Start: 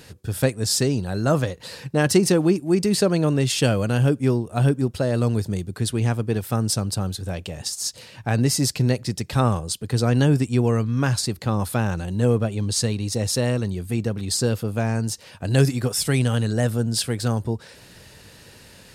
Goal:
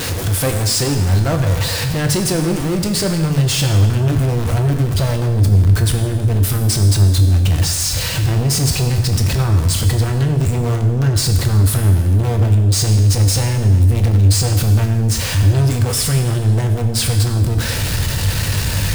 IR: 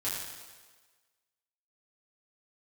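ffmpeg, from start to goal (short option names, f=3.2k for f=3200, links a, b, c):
-filter_complex "[0:a]aeval=exprs='val(0)+0.5*0.106*sgn(val(0))':c=same,asubboost=boost=6.5:cutoff=120,asoftclip=type=tanh:threshold=-16dB,asplit=2[a][b];[1:a]atrim=start_sample=2205[c];[b][c]afir=irnorm=-1:irlink=0,volume=-6.5dB[d];[a][d]amix=inputs=2:normalize=0"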